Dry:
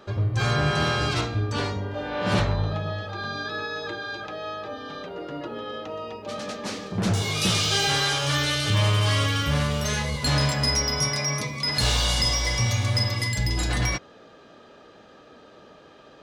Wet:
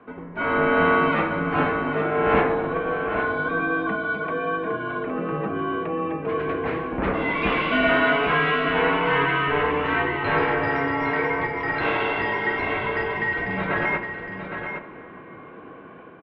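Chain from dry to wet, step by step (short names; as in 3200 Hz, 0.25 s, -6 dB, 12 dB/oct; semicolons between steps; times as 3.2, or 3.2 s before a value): AGC gain up to 7.5 dB; echo 0.812 s -8 dB; reverb RT60 3.5 s, pre-delay 7 ms, DRR 10.5 dB; mistuned SSB -140 Hz 300–2500 Hz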